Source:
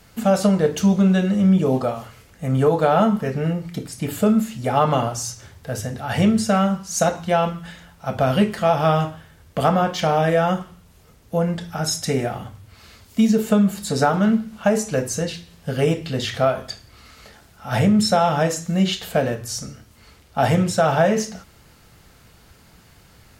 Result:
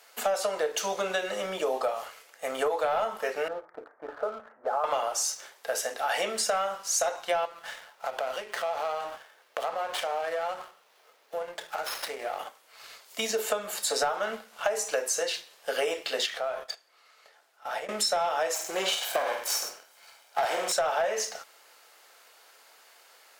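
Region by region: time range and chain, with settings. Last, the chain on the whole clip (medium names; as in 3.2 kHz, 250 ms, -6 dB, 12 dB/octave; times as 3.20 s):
3.48–4.84 s: steep low-pass 1.6 kHz 48 dB/octave + peaking EQ 170 Hz -10.5 dB 0.79 oct + compression 2:1, threshold -28 dBFS
7.45–12.39 s: compression 5:1, threshold -29 dBFS + sliding maximum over 5 samples
16.26–17.89 s: gate -37 dBFS, range -8 dB + treble shelf 3.5 kHz -5.5 dB + compression 3:1, threshold -33 dBFS
18.54–20.72 s: comb filter that takes the minimum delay 1.3 ms + multi-tap echo 48/102 ms -7.5/-12 dB
whole clip: high-pass 510 Hz 24 dB/octave; waveshaping leveller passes 1; compression 6:1, threshold -25 dBFS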